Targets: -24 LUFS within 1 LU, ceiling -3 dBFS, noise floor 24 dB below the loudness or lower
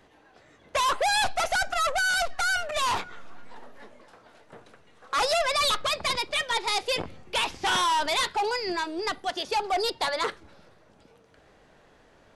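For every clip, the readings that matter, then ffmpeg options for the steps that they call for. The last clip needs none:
loudness -26.0 LUFS; peak level -18.5 dBFS; loudness target -24.0 LUFS
-> -af "volume=1.26"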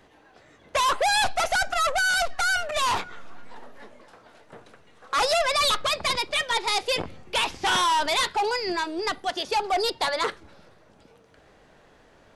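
loudness -24.0 LUFS; peak level -16.5 dBFS; noise floor -56 dBFS

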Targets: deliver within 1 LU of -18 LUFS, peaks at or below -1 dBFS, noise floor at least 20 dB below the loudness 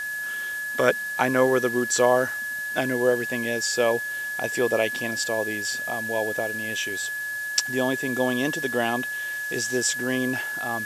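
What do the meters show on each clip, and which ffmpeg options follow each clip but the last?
steady tone 1.7 kHz; tone level -28 dBFS; noise floor -31 dBFS; noise floor target -45 dBFS; loudness -24.5 LUFS; peak level -4.0 dBFS; loudness target -18.0 LUFS
-> -af "bandreject=f=1700:w=30"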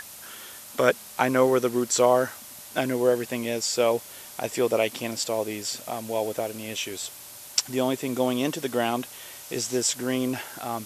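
steady tone not found; noise floor -44 dBFS; noise floor target -46 dBFS
-> -af "afftdn=nr=6:nf=-44"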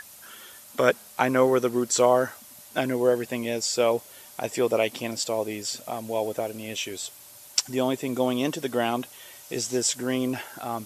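noise floor -48 dBFS; loudness -26.0 LUFS; peak level -4.5 dBFS; loudness target -18.0 LUFS
-> -af "volume=2.51,alimiter=limit=0.891:level=0:latency=1"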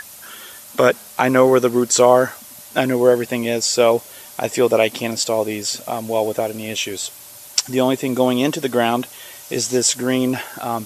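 loudness -18.5 LUFS; peak level -1.0 dBFS; noise floor -40 dBFS

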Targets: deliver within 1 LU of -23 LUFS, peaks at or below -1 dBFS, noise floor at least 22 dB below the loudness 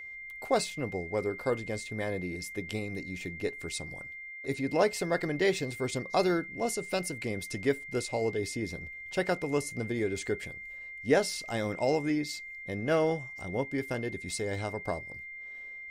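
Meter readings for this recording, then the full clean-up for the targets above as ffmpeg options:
steady tone 2.1 kHz; tone level -41 dBFS; loudness -32.5 LUFS; peak level -12.5 dBFS; loudness target -23.0 LUFS
-> -af "bandreject=f=2100:w=30"
-af "volume=2.99"

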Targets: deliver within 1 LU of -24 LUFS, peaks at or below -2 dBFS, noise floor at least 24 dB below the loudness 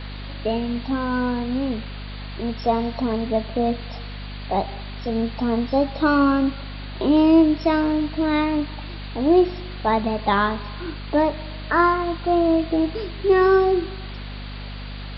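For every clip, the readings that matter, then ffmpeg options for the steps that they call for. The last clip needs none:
hum 50 Hz; highest harmonic 250 Hz; hum level -31 dBFS; noise floor -33 dBFS; noise floor target -46 dBFS; loudness -21.5 LUFS; peak level -5.0 dBFS; loudness target -24.0 LUFS
-> -af "bandreject=f=50:t=h:w=4,bandreject=f=100:t=h:w=4,bandreject=f=150:t=h:w=4,bandreject=f=200:t=h:w=4,bandreject=f=250:t=h:w=4"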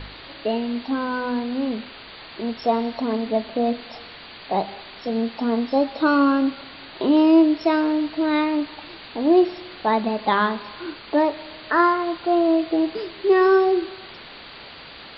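hum not found; noise floor -41 dBFS; noise floor target -46 dBFS
-> -af "afftdn=nr=6:nf=-41"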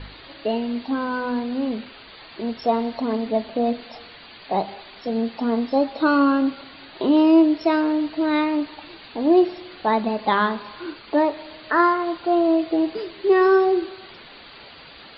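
noise floor -44 dBFS; noise floor target -46 dBFS
-> -af "afftdn=nr=6:nf=-44"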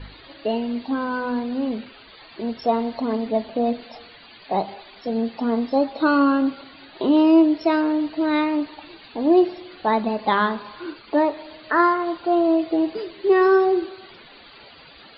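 noise floor -47 dBFS; loudness -21.5 LUFS; peak level -5.5 dBFS; loudness target -24.0 LUFS
-> -af "volume=0.75"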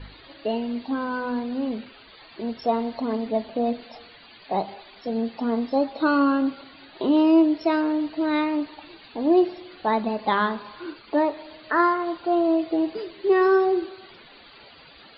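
loudness -24.0 LUFS; peak level -8.0 dBFS; noise floor -49 dBFS

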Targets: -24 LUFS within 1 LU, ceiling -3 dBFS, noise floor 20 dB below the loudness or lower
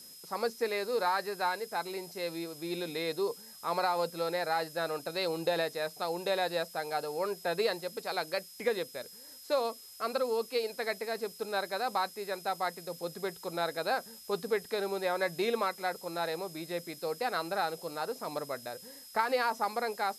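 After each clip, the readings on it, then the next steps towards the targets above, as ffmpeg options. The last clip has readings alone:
steady tone 5.1 kHz; tone level -52 dBFS; noise floor -51 dBFS; noise floor target -54 dBFS; loudness -34.0 LUFS; peak level -14.5 dBFS; loudness target -24.0 LUFS
-> -af "bandreject=f=5100:w=30"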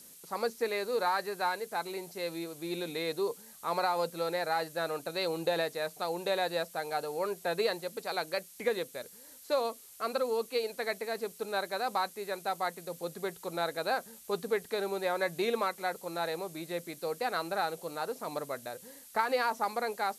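steady tone not found; noise floor -53 dBFS; noise floor target -54 dBFS
-> -af "afftdn=nr=6:nf=-53"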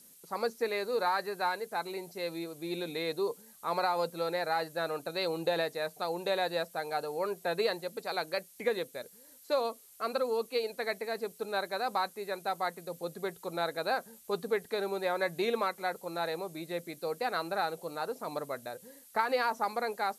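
noise floor -57 dBFS; loudness -34.0 LUFS; peak level -15.0 dBFS; loudness target -24.0 LUFS
-> -af "volume=3.16"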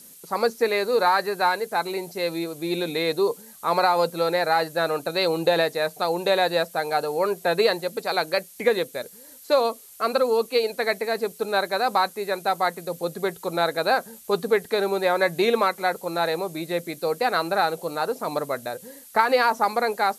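loudness -24.0 LUFS; peak level -5.0 dBFS; noise floor -47 dBFS

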